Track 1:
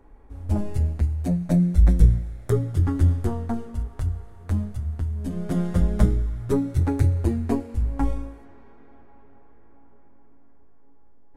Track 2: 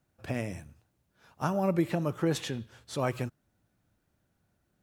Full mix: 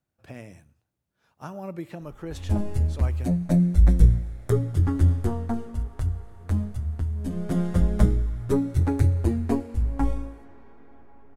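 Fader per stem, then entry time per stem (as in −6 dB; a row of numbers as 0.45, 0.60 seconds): −0.5, −8.0 decibels; 2.00, 0.00 seconds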